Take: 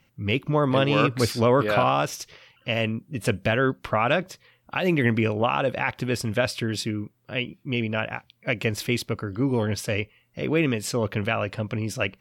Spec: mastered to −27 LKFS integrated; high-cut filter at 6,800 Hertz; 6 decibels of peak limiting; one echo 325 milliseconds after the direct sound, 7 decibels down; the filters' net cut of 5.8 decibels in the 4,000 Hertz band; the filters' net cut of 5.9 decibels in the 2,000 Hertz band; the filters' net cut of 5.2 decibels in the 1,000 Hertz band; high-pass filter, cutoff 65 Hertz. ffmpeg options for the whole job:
ffmpeg -i in.wav -af "highpass=65,lowpass=6800,equalizer=frequency=1000:width_type=o:gain=-5.5,equalizer=frequency=2000:width_type=o:gain=-4.5,equalizer=frequency=4000:width_type=o:gain=-5.5,alimiter=limit=-16dB:level=0:latency=1,aecho=1:1:325:0.447,volume=1dB" out.wav

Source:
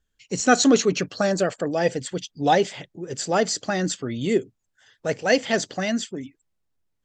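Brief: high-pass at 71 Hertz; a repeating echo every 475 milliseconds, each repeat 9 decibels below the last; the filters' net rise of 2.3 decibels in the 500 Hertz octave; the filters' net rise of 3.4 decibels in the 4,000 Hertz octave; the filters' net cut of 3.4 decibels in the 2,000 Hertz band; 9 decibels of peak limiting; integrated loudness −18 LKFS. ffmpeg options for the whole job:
ffmpeg -i in.wav -af "highpass=71,equalizer=frequency=500:width_type=o:gain=3,equalizer=frequency=2000:width_type=o:gain=-6,equalizer=frequency=4000:width_type=o:gain=5.5,alimiter=limit=-12.5dB:level=0:latency=1,aecho=1:1:475|950|1425|1900:0.355|0.124|0.0435|0.0152,volume=6.5dB" out.wav

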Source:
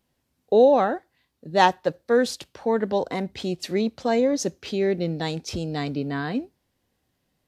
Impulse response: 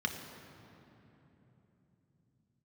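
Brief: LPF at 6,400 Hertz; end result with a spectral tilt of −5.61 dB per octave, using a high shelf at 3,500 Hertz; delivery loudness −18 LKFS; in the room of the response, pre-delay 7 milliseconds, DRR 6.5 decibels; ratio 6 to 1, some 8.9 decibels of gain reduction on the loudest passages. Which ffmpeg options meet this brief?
-filter_complex "[0:a]lowpass=6400,highshelf=frequency=3500:gain=-5,acompressor=threshold=-21dB:ratio=6,asplit=2[link_01][link_02];[1:a]atrim=start_sample=2205,adelay=7[link_03];[link_02][link_03]afir=irnorm=-1:irlink=0,volume=-12dB[link_04];[link_01][link_04]amix=inputs=2:normalize=0,volume=9.5dB"

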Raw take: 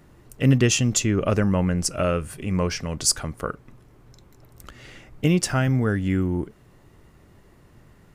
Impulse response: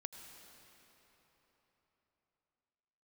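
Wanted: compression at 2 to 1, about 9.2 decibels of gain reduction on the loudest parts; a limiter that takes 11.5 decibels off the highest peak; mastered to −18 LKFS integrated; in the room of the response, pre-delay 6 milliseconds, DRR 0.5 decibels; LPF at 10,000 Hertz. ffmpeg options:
-filter_complex "[0:a]lowpass=10000,acompressor=threshold=-30dB:ratio=2,alimiter=level_in=2dB:limit=-24dB:level=0:latency=1,volume=-2dB,asplit=2[link_01][link_02];[1:a]atrim=start_sample=2205,adelay=6[link_03];[link_02][link_03]afir=irnorm=-1:irlink=0,volume=3dB[link_04];[link_01][link_04]amix=inputs=2:normalize=0,volume=15dB"

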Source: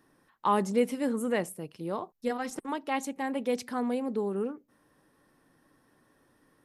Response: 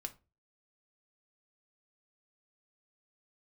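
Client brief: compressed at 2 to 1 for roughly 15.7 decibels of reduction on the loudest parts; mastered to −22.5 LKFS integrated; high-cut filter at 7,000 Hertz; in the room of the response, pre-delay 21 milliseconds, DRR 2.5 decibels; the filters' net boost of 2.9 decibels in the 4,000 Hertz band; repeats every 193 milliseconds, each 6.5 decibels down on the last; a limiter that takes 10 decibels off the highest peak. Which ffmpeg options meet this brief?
-filter_complex "[0:a]lowpass=7000,equalizer=frequency=4000:width_type=o:gain=4.5,acompressor=threshold=-50dB:ratio=2,alimiter=level_in=13dB:limit=-24dB:level=0:latency=1,volume=-13dB,aecho=1:1:193|386|579|772|965|1158:0.473|0.222|0.105|0.0491|0.0231|0.0109,asplit=2[link_01][link_02];[1:a]atrim=start_sample=2205,adelay=21[link_03];[link_02][link_03]afir=irnorm=-1:irlink=0,volume=0dB[link_04];[link_01][link_04]amix=inputs=2:normalize=0,volume=20.5dB"

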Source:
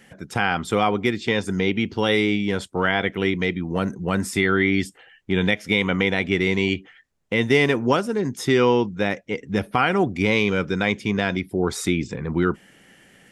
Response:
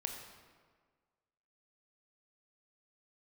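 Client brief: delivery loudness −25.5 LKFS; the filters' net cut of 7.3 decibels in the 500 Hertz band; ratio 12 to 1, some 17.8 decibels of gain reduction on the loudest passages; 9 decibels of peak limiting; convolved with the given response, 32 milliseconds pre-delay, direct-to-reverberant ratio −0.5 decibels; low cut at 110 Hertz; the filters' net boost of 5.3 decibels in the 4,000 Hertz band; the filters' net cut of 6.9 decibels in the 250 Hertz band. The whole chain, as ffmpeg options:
-filter_complex "[0:a]highpass=110,equalizer=frequency=250:width_type=o:gain=-7.5,equalizer=frequency=500:width_type=o:gain=-6.5,equalizer=frequency=4000:width_type=o:gain=7,acompressor=threshold=-33dB:ratio=12,alimiter=level_in=1.5dB:limit=-24dB:level=0:latency=1,volume=-1.5dB,asplit=2[link_01][link_02];[1:a]atrim=start_sample=2205,adelay=32[link_03];[link_02][link_03]afir=irnorm=-1:irlink=0,volume=0.5dB[link_04];[link_01][link_04]amix=inputs=2:normalize=0,volume=10dB"

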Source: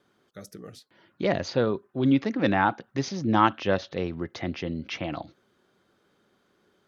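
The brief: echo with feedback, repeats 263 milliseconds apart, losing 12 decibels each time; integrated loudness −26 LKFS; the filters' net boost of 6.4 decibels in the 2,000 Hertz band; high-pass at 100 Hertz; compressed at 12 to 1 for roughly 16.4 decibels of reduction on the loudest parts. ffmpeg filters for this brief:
ffmpeg -i in.wav -af "highpass=100,equalizer=frequency=2000:width_type=o:gain=8.5,acompressor=threshold=-29dB:ratio=12,aecho=1:1:263|526|789:0.251|0.0628|0.0157,volume=9dB" out.wav

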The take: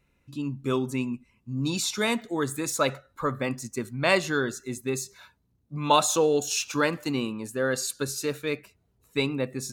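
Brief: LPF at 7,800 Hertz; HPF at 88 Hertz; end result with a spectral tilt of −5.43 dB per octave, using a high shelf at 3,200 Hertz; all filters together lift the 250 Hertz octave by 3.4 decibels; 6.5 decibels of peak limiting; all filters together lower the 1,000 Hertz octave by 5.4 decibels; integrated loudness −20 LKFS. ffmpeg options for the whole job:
ffmpeg -i in.wav -af "highpass=88,lowpass=7800,equalizer=frequency=250:width_type=o:gain=4.5,equalizer=frequency=1000:width_type=o:gain=-6,highshelf=frequency=3200:gain=-8,volume=9.5dB,alimiter=limit=-7.5dB:level=0:latency=1" out.wav

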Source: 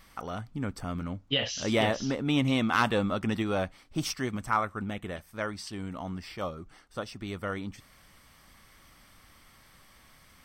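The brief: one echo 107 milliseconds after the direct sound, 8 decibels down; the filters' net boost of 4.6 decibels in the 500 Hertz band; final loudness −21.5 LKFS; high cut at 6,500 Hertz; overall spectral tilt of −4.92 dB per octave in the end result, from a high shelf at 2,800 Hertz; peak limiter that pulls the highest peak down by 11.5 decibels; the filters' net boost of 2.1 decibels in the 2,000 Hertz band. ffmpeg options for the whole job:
ffmpeg -i in.wav -af "lowpass=6500,equalizer=frequency=500:width_type=o:gain=5.5,equalizer=frequency=2000:width_type=o:gain=5,highshelf=frequency=2800:gain=-6.5,alimiter=limit=-22dB:level=0:latency=1,aecho=1:1:107:0.398,volume=12dB" out.wav

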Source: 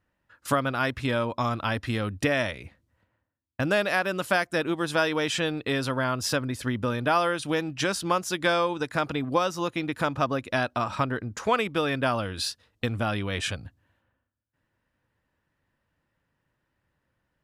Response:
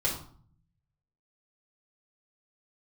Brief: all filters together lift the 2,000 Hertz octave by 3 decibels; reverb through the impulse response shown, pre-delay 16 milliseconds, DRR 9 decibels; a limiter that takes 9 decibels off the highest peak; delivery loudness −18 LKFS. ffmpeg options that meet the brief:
-filter_complex "[0:a]equalizer=frequency=2000:width_type=o:gain=4,alimiter=limit=-17dB:level=0:latency=1,asplit=2[link_01][link_02];[1:a]atrim=start_sample=2205,adelay=16[link_03];[link_02][link_03]afir=irnorm=-1:irlink=0,volume=-16.5dB[link_04];[link_01][link_04]amix=inputs=2:normalize=0,volume=10dB"

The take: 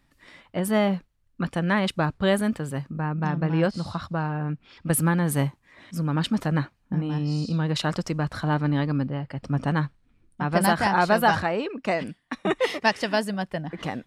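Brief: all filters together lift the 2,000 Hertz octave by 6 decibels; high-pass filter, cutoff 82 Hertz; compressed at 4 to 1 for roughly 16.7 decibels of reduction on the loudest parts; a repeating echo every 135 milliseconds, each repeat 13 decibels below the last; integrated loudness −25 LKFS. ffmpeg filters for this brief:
ffmpeg -i in.wav -af "highpass=82,equalizer=frequency=2000:width_type=o:gain=7.5,acompressor=threshold=-34dB:ratio=4,aecho=1:1:135|270|405:0.224|0.0493|0.0108,volume=11dB" out.wav

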